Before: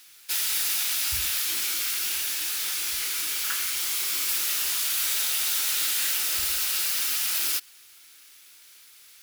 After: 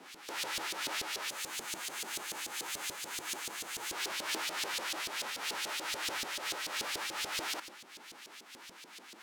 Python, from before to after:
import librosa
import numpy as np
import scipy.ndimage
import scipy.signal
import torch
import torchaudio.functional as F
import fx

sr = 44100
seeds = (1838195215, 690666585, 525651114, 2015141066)

p1 = fx.envelope_flatten(x, sr, power=0.1)
p2 = scipy.signal.sosfilt(scipy.signal.butter(4, 120.0, 'highpass', fs=sr, output='sos'), p1)
p3 = fx.spec_box(p2, sr, start_s=1.29, length_s=2.63, low_hz=250.0, high_hz=6000.0, gain_db=-6)
p4 = fx.over_compress(p3, sr, threshold_db=-33.0, ratio=-0.5)
p5 = p3 + (p4 * librosa.db_to_amplitude(3.0))
p6 = fx.dmg_noise_band(p5, sr, seeds[0], low_hz=170.0, high_hz=360.0, level_db=-53.0)
p7 = fx.filter_lfo_bandpass(p6, sr, shape='saw_up', hz=6.9, low_hz=400.0, high_hz=4500.0, q=1.2)
p8 = 10.0 ** (-25.5 / 20.0) * np.tanh(p7 / 10.0 ** (-25.5 / 20.0))
p9 = p8 + fx.echo_single(p8, sr, ms=150, db=-18.5, dry=0)
y = fx.am_noise(p9, sr, seeds[1], hz=5.7, depth_pct=50)